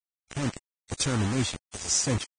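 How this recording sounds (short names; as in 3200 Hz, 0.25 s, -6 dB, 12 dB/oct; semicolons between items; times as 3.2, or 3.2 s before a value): tremolo triangle 4.3 Hz, depth 55%; a quantiser's noise floor 6-bit, dither none; Vorbis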